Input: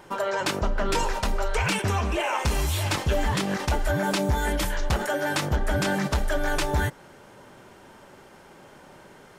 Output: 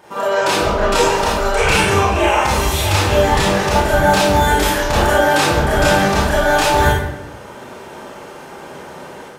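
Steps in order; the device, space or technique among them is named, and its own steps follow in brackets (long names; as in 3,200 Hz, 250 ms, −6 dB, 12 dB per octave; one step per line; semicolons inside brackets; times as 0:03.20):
far laptop microphone (convolution reverb RT60 0.85 s, pre-delay 27 ms, DRR −8.5 dB; high-pass filter 120 Hz 6 dB per octave; automatic gain control gain up to 6.5 dB)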